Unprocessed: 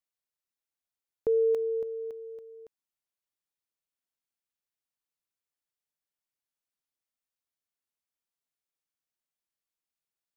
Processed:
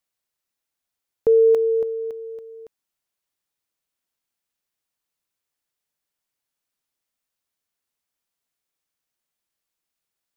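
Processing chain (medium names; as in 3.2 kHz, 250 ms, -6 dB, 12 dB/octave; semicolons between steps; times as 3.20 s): dynamic bell 870 Hz, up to +4 dB, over -37 dBFS, Q 0.73; trim +8 dB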